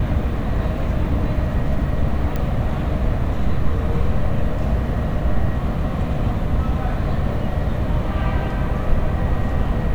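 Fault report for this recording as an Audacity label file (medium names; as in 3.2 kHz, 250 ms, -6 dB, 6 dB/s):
2.360000	2.360000	pop -12 dBFS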